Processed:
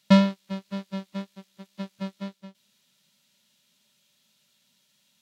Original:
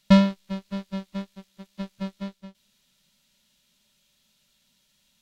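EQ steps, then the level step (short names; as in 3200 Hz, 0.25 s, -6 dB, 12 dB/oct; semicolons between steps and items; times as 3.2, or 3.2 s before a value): HPF 82 Hz 24 dB/oct; low shelf 140 Hz -4 dB; 0.0 dB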